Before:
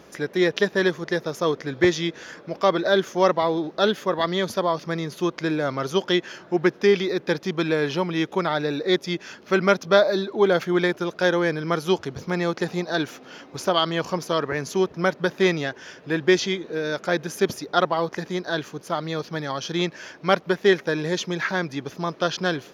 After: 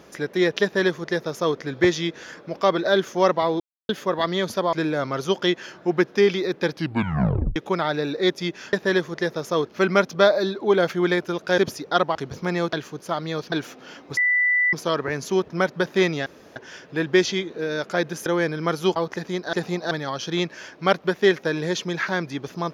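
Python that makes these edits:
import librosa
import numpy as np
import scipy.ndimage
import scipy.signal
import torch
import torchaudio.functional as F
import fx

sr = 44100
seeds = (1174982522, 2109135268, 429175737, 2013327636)

y = fx.edit(x, sr, fx.duplicate(start_s=0.63, length_s=0.94, to_s=9.39),
    fx.silence(start_s=3.6, length_s=0.29),
    fx.cut(start_s=4.73, length_s=0.66),
    fx.tape_stop(start_s=7.37, length_s=0.85),
    fx.swap(start_s=11.3, length_s=0.7, other_s=17.4, other_length_s=0.57),
    fx.swap(start_s=12.58, length_s=0.38, other_s=18.54, other_length_s=0.79),
    fx.bleep(start_s=13.61, length_s=0.56, hz=1980.0, db=-16.5),
    fx.insert_room_tone(at_s=15.7, length_s=0.3), tone=tone)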